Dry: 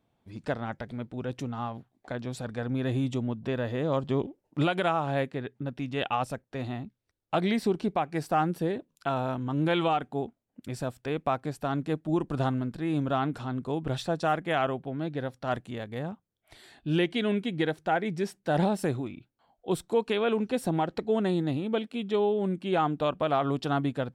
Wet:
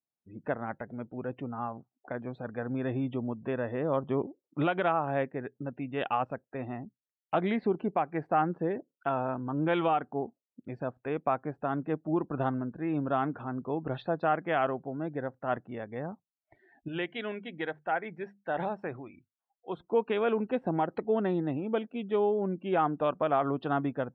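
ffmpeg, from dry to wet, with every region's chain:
ffmpeg -i in.wav -filter_complex "[0:a]asettb=1/sr,asplit=3[link_01][link_02][link_03];[link_01]atrim=end=16.884[link_04];[link_02]atrim=start=16.88:end=19.8,asetpts=PTS-STARTPTS,afade=type=in:duration=0.004:curve=qsin,afade=type=out:start_time=2.916:duration=0.004:curve=qsin,equalizer=frequency=230:width=0.46:gain=-9,bandreject=frequency=50:width_type=h:width=6,bandreject=frequency=100:width_type=h:width=6,bandreject=frequency=150:width_type=h:width=6,bandreject=frequency=200:width_type=h:width=6,bandreject=frequency=250:width_type=h:width=6[link_05];[link_03]atrim=start=19.796[link_06];[link_04][link_05]acrossfade=duration=0.004:curve1=hsin:curve2=qsin[link_07];[link_07][link_06]acrossfade=duration=0.004:curve1=qsin:curve2=hsin,lowpass=2200,afftdn=noise_reduction=27:noise_floor=-51,highpass=frequency=220:poles=1" out.wav

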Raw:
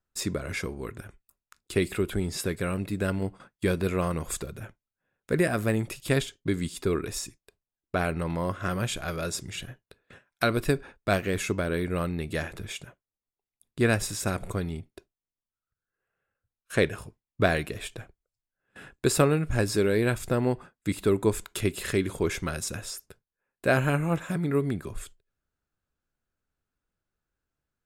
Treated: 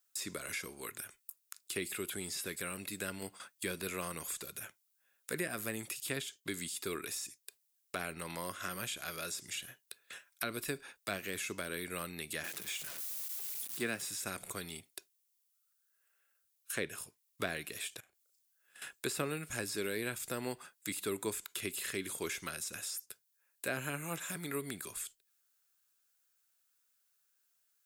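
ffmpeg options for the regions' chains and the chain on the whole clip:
ffmpeg -i in.wav -filter_complex "[0:a]asettb=1/sr,asplit=3[link_01][link_02][link_03];[link_01]atrim=end=12.444[link_04];[link_02]atrim=start=12.44:end=14.09,asetpts=PTS-STARTPTS,afade=type=in:duration=0.004:curve=qsin,afade=type=out:start_time=1.646:duration=0.004:curve=qsin,aeval=exprs='val(0)+0.5*0.0133*sgn(val(0))':channel_layout=same,highpass=frequency=130:width=0.5412,highpass=frequency=130:width=1.3066[link_05];[link_03]atrim=start=14.086[link_06];[link_04][link_05]acrossfade=duration=0.004:curve1=hsin:curve2=qsin[link_07];[link_07][link_06]acrossfade=duration=0.004:curve1=qsin:curve2=hsin,asettb=1/sr,asplit=3[link_08][link_09][link_10];[link_08]atrim=end=18.004[link_11];[link_09]atrim=start=18:end=18.82,asetpts=PTS-STARTPTS,afade=type=in:duration=0.004:curve=qsin,afade=type=out:start_time=0.816:duration=0.004:curve=qsin,acompressor=threshold=-58dB:ratio=8:attack=3.2:release=140:knee=1:detection=peak,asplit=2[link_12][link_13];[link_13]adelay=35,volume=-5.5dB[link_14];[link_12][link_14]amix=inputs=2:normalize=0,atrim=end_sample=36162[link_15];[link_10]atrim=start=18.816[link_16];[link_11][link_15]acrossfade=duration=0.004:curve1=hsin:curve2=qsin[link_17];[link_17][link_16]acrossfade=duration=0.004:curve1=qsin:curve2=hsin,acrossover=split=3100[link_18][link_19];[link_19]acompressor=threshold=-45dB:ratio=4:attack=1:release=60[link_20];[link_18][link_20]amix=inputs=2:normalize=0,aderivative,acrossover=split=360[link_21][link_22];[link_22]acompressor=threshold=-58dB:ratio=2.5[link_23];[link_21][link_23]amix=inputs=2:normalize=0,volume=15.5dB" out.wav

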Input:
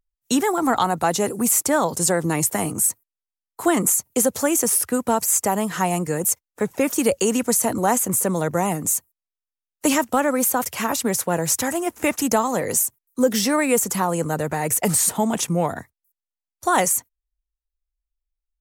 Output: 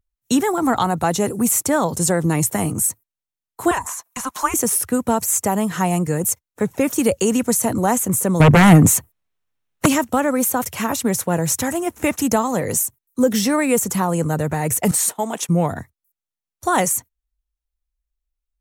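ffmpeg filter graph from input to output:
ffmpeg -i in.wav -filter_complex "[0:a]asettb=1/sr,asplit=3[link_01][link_02][link_03];[link_01]atrim=end=3.714[link_04];[link_02]atrim=start=3.71:end=4.54,asetpts=PTS-STARTPTS,afade=type=in:duration=0.004:curve=qsin,afade=type=out:start_time=0.826:duration=0.004:curve=qsin,acrossover=split=4900[link_05][link_06];[link_06]acompressor=threshold=-30dB:ratio=4:attack=1:release=60[link_07];[link_05][link_07]amix=inputs=2:normalize=0,highpass=frequency=1300:width_type=q:width=5.5,afreqshift=-260[link_08];[link_03]atrim=start=4.536[link_09];[link_04][link_08]acrossfade=duration=0.004:curve1=hsin:curve2=qsin[link_10];[link_10][link_09]acrossfade=duration=0.004:curve1=qsin:curve2=hsin,asettb=1/sr,asplit=3[link_11][link_12][link_13];[link_11]atrim=end=8.404[link_14];[link_12]atrim=start=8.4:end=9.86,asetpts=PTS-STARTPTS,afade=type=in:duration=0.004:curve=qsin,afade=type=out:start_time=1.456:duration=0.004:curve=qsin,bass=frequency=250:gain=1,treble=frequency=4000:gain=-10,aeval=exprs='0.398*sin(PI/2*3.55*val(0)/0.398)':channel_layout=same[link_15];[link_13]atrim=start=9.856[link_16];[link_14][link_15]acrossfade=duration=0.004:curve1=hsin:curve2=qsin[link_17];[link_17][link_16]acrossfade=duration=0.004:curve1=qsin:curve2=hsin,asettb=1/sr,asplit=3[link_18][link_19][link_20];[link_18]atrim=end=14.914[link_21];[link_19]atrim=start=14.91:end=15.49,asetpts=PTS-STARTPTS,afade=type=in:duration=0.004:curve=qsin,afade=type=out:start_time=0.576:duration=0.004:curve=qsin,agate=range=-33dB:threshold=-23dB:ratio=3:release=100:detection=peak,highpass=410[link_22];[link_20]atrim=start=15.486[link_23];[link_21][link_22]acrossfade=duration=0.004:curve1=hsin:curve2=qsin[link_24];[link_24][link_23]acrossfade=duration=0.004:curve1=qsin:curve2=hsin,equalizer=frequency=92:width_type=o:width=2.3:gain=9,bandreject=frequency=4800:width=15" out.wav

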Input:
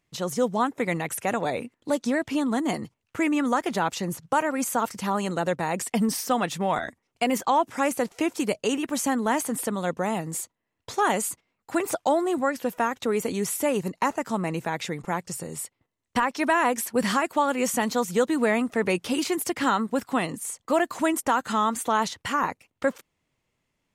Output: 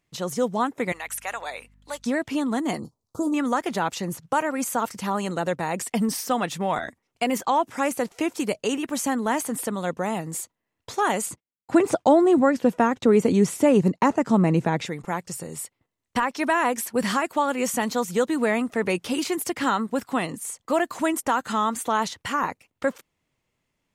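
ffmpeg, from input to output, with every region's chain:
ffmpeg -i in.wav -filter_complex "[0:a]asettb=1/sr,asplit=3[link_01][link_02][link_03];[link_01]atrim=end=0.924[link_04];[link_02]atrim=start=0.92:end=2.06,asetpts=PTS-STARTPTS,afade=type=in:duration=0.004:curve=qsin,afade=type=out:start_time=1.136:duration=0.004:curve=qsin,highpass=970,aeval=exprs='val(0)+0.00158*(sin(2*PI*50*n/s)+sin(2*PI*2*50*n/s)/2+sin(2*PI*3*50*n/s)/3+sin(2*PI*4*50*n/s)/4+sin(2*PI*5*50*n/s)/5)':channel_layout=same[link_05];[link_03]atrim=start=2.056[link_06];[link_04][link_05]acrossfade=duration=0.004:curve1=hsin:curve2=qsin[link_07];[link_07][link_06]acrossfade=duration=0.004:curve1=qsin:curve2=hsin,asettb=1/sr,asplit=3[link_08][link_09][link_10];[link_08]atrim=end=2.794[link_11];[link_09]atrim=start=2.79:end=3.34,asetpts=PTS-STARTPTS,afade=type=in:duration=0.004:curve=qsin,afade=type=out:start_time=0.546:duration=0.004:curve=qsin,asuperstop=centerf=2200:order=8:qfactor=0.75,asplit=2[link_12][link_13];[link_13]adelay=26,volume=-12dB[link_14];[link_12][link_14]amix=inputs=2:normalize=0,atrim=end_sample=24255[link_15];[link_10]atrim=start=3.336[link_16];[link_11][link_15]acrossfade=duration=0.004:curve1=hsin:curve2=qsin[link_17];[link_17][link_16]acrossfade=duration=0.004:curve1=qsin:curve2=hsin,asettb=1/sr,asplit=3[link_18][link_19][link_20];[link_18]atrim=end=11.264[link_21];[link_19]atrim=start=11.26:end=14.86,asetpts=PTS-STARTPTS,afade=type=in:duration=0.004:curve=qsin,afade=type=out:start_time=3.596:duration=0.004:curve=qsin,lowpass=8600,agate=range=-33dB:threshold=-44dB:ratio=3:release=100:detection=peak,equalizer=frequency=170:width=0.31:gain=10.5[link_22];[link_20]atrim=start=14.856[link_23];[link_21][link_22]acrossfade=duration=0.004:curve1=hsin:curve2=qsin[link_24];[link_24][link_23]acrossfade=duration=0.004:curve1=qsin:curve2=hsin" out.wav

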